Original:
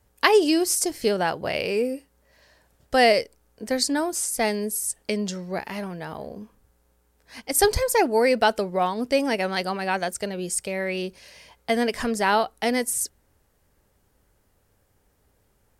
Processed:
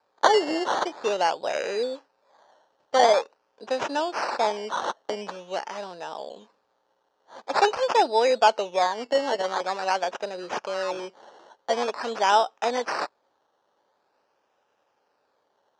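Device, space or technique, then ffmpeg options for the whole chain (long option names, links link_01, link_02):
circuit-bent sampling toy: -af "acrusher=samples=14:mix=1:aa=0.000001:lfo=1:lforange=8.4:lforate=0.46,highpass=490,equalizer=frequency=560:width_type=q:width=4:gain=3,equalizer=frequency=870:width_type=q:width=4:gain=5,equalizer=frequency=2100:width_type=q:width=4:gain=-9,equalizer=frequency=3500:width_type=q:width=4:gain=-3,lowpass=frequency=5800:width=0.5412,lowpass=frequency=5800:width=1.3066"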